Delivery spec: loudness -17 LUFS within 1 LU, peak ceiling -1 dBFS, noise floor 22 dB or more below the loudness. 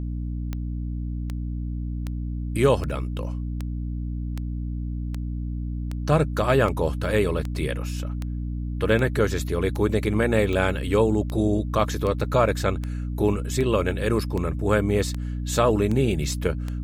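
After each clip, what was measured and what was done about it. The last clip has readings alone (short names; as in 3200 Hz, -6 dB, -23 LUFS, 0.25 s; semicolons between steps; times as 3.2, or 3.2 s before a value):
clicks 22; hum 60 Hz; harmonics up to 300 Hz; hum level -26 dBFS; loudness -25.0 LUFS; peak -6.5 dBFS; loudness target -17.0 LUFS
-> de-click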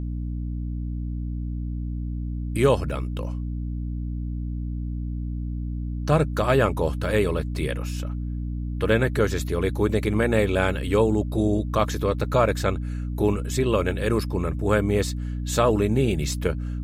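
clicks 0; hum 60 Hz; harmonics up to 300 Hz; hum level -26 dBFS
-> notches 60/120/180/240/300 Hz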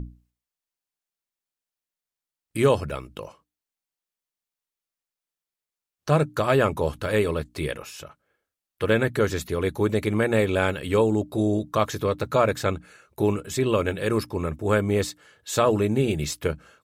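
hum none; loudness -24.5 LUFS; peak -6.5 dBFS; loudness target -17.0 LUFS
-> gain +7.5 dB; limiter -1 dBFS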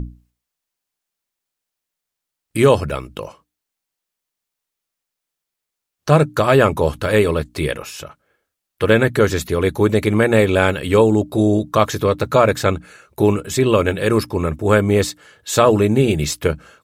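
loudness -17.0 LUFS; peak -1.0 dBFS; noise floor -82 dBFS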